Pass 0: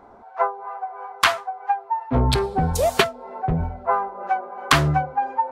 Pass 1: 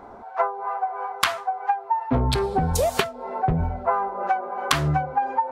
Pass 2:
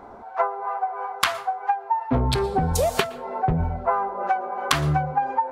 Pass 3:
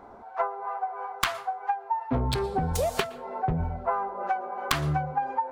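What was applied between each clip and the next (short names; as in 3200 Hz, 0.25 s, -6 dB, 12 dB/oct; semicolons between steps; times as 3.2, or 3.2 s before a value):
compressor 12:1, threshold -23 dBFS, peak gain reduction 13 dB; gain +5 dB
plate-style reverb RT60 0.54 s, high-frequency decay 0.55×, pre-delay 0.105 s, DRR 19 dB
tracing distortion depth 0.084 ms; gain -5 dB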